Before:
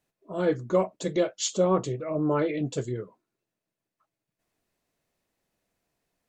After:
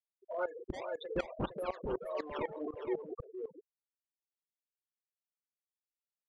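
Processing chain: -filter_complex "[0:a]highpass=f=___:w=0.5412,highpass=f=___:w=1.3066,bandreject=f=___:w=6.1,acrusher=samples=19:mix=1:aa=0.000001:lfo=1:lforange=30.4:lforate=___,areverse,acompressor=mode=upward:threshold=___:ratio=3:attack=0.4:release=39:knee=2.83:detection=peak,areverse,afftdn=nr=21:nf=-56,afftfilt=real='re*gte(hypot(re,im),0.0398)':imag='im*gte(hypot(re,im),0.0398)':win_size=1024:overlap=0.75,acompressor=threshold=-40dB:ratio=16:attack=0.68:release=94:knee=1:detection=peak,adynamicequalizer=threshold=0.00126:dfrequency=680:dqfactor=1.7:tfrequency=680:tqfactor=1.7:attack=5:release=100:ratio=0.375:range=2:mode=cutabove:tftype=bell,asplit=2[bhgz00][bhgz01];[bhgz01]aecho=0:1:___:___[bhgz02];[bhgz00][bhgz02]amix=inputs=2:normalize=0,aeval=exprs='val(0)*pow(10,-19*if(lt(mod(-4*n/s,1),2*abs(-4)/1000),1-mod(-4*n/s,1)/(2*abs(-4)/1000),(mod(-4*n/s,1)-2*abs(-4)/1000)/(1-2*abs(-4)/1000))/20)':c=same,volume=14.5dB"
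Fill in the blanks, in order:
530, 530, 6200, 1.7, -34dB, 460, 0.473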